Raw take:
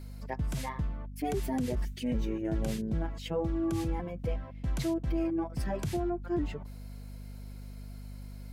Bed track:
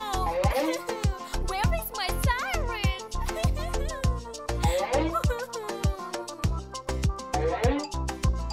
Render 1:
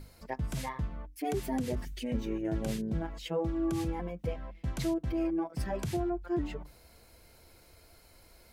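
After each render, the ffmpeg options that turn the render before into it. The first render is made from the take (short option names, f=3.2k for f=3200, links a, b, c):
-af "bandreject=f=50:t=h:w=6,bandreject=f=100:t=h:w=6,bandreject=f=150:t=h:w=6,bandreject=f=200:t=h:w=6,bandreject=f=250:t=h:w=6,bandreject=f=300:t=h:w=6"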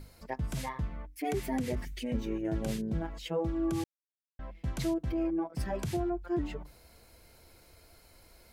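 -filter_complex "[0:a]asettb=1/sr,asplit=3[a][b][c];[a]atrim=end=0.864[d];[b]atrim=start=0.86:end=2.01,asetpts=PTS-STARTPTS,afade=t=in:d=0.004:c=qsin,afade=t=out:st=1.146:d=0.004:c=qsin,equalizer=f=2.1k:w=3:g=6[e];[c]atrim=start=2.006[f];[d][e]acrossfade=d=0.004:c1=hsin:c2=qsin[g];[g][f]acrossfade=d=0.004:c1=qsin:c2=hsin,asettb=1/sr,asplit=3[h][i][j];[h]atrim=end=5.144[k];[i]atrim=start=5.14:end=5.55,asetpts=PTS-STARTPTS,afade=t=in:d=0.004:c=qsin,afade=t=out:st=0.406:d=0.004:c=qsin,highshelf=f=3.4k:g=-10[l];[j]atrim=start=5.546[m];[k][l]acrossfade=d=0.004:c1=hsin:c2=qsin[n];[n][m]acrossfade=d=0.004:c1=qsin:c2=hsin,asplit=3[o][p][q];[o]atrim=end=3.84,asetpts=PTS-STARTPTS,afade=t=out:st=3.836:d=0.004:c=hsin[r];[p]atrim=start=3.84:end=4.39,asetpts=PTS-STARTPTS,volume=0[s];[q]atrim=start=4.39,asetpts=PTS-STARTPTS,afade=t=in:d=0.004:c=hsin[t];[r][s][t]concat=n=3:v=0:a=1"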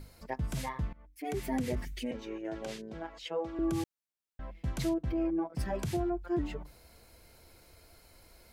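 -filter_complex "[0:a]asettb=1/sr,asplit=3[a][b][c];[a]atrim=end=2.114[d];[b]atrim=start=2.11:end=3.59,asetpts=PTS-STARTPTS,afade=t=in:d=0.004:c=qsin,afade=t=out:st=1.476:d=0.004:c=qsin,acrossover=split=360 7300:gain=0.158 1 0.2[e][f][g];[e][f][g]amix=inputs=3:normalize=0[h];[c]atrim=start=3.586[i];[d][h]acrossfade=d=0.004:c1=hsin:c2=qsin[j];[j][i]acrossfade=d=0.004:c1=qsin:c2=hsin,asettb=1/sr,asplit=3[k][l][m];[k]atrim=end=4.894[n];[l]atrim=start=4.89:end=5.59,asetpts=PTS-STARTPTS,afade=t=in:d=0.004:c=qsin,afade=t=out:st=0.696:d=0.004:c=qsin,highshelf=f=5.5k:g=-8[o];[m]atrim=start=5.586[p];[n][o]acrossfade=d=0.004:c1=hsin:c2=qsin[q];[q][p]acrossfade=d=0.004:c1=qsin:c2=hsin,asplit=2[r][s];[r]atrim=end=0.93,asetpts=PTS-STARTPTS,afade=t=out:st=0.926:d=0.004:c=hsin:silence=0.0794328[t];[s]atrim=start=0.93,asetpts=PTS-STARTPTS,afade=t=in:d=0.59:silence=0.0794328[u];[t][u]concat=n=2:v=0:a=1"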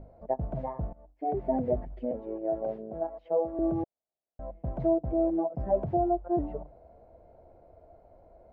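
-af "acrusher=bits=5:mode=log:mix=0:aa=0.000001,lowpass=f=660:t=q:w=4.9"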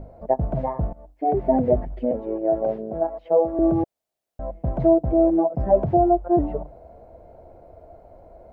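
-af "volume=9dB"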